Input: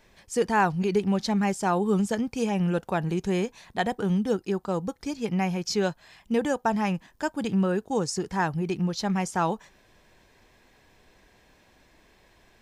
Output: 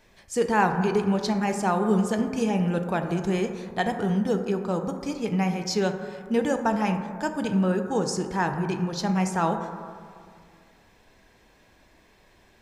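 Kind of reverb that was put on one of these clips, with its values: plate-style reverb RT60 2.1 s, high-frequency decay 0.25×, DRR 5.5 dB

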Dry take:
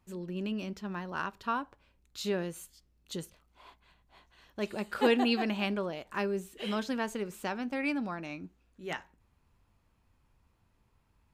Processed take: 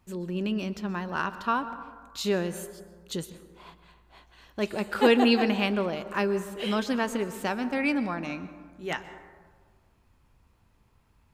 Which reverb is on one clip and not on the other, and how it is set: plate-style reverb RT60 1.6 s, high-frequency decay 0.35×, pre-delay 110 ms, DRR 12.5 dB; trim +5.5 dB

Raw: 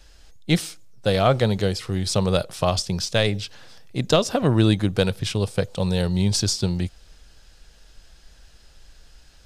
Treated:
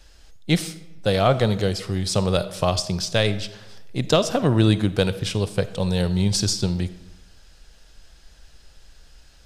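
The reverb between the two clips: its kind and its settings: algorithmic reverb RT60 1 s, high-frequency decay 0.7×, pre-delay 10 ms, DRR 13.5 dB

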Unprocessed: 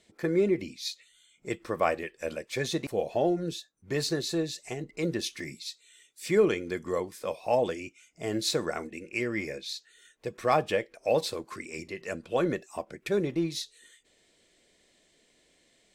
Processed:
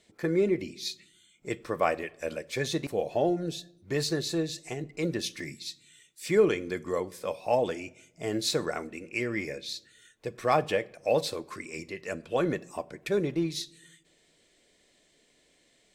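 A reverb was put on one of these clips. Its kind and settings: simulated room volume 2300 m³, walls furnished, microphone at 0.35 m

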